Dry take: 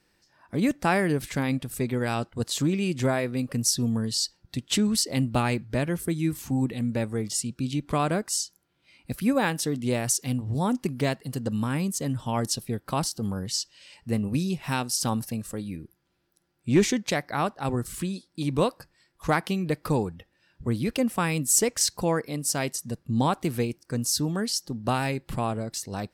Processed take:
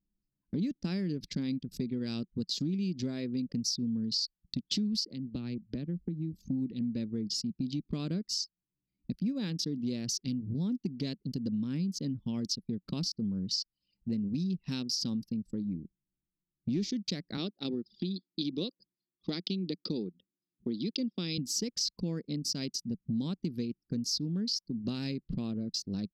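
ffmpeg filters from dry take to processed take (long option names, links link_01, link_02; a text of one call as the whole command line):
ffmpeg -i in.wav -filter_complex "[0:a]asettb=1/sr,asplit=3[link_01][link_02][link_03];[link_01]atrim=end=5.074[link_04];[link_02]atrim=start=5.07:end=6.34,asetpts=PTS-STARTPTS,afade=type=in:duration=0.004:curve=qsin,afade=type=out:start_time=1.266:duration=0.004:curve=qsin,acrossover=split=150|3700[link_05][link_06][link_07];[link_05]acompressor=threshold=-40dB:ratio=4[link_08];[link_06]acompressor=threshold=-36dB:ratio=4[link_09];[link_07]acompressor=threshold=-52dB:ratio=4[link_10];[link_08][link_09][link_10]amix=inputs=3:normalize=0[link_11];[link_03]atrim=start=6.336[link_12];[link_04][link_11]acrossfade=duration=0.004:curve1=hsin:curve2=qsin[link_13];[link_13][link_12]acrossfade=duration=0.004:curve1=qsin:curve2=hsin,asettb=1/sr,asplit=3[link_14][link_15][link_16];[link_14]atrim=end=17.374[link_17];[link_15]atrim=start=17.37:end=21.38,asetpts=PTS-STARTPTS,afade=type=in:duration=0.004:curve=qsin,afade=type=out:start_time=4.006:duration=0.004:curve=qsin,highpass=240,equalizer=frequency=360:width_type=q:width=4:gain=4,equalizer=frequency=980:width_type=q:width=4:gain=-7,equalizer=frequency=1600:width_type=q:width=4:gain=-6,equalizer=frequency=3500:width_type=q:width=4:gain=9,equalizer=frequency=5000:width_type=q:width=4:gain=6,lowpass=frequency=5500:width=0.5412,lowpass=frequency=5500:width=1.3066[link_18];[link_16]atrim=start=21.376[link_19];[link_17][link_18]acrossfade=duration=0.004:curve1=hsin:curve2=qsin[link_20];[link_20][link_19]acrossfade=duration=0.004:curve1=qsin:curve2=hsin,anlmdn=3.98,firequalizer=gain_entry='entry(130,0);entry(180,11);entry(760,-16);entry(4800,14);entry(8800,-18);entry(12000,-10)':delay=0.05:min_phase=1,acompressor=threshold=-31dB:ratio=4,volume=-1.5dB" out.wav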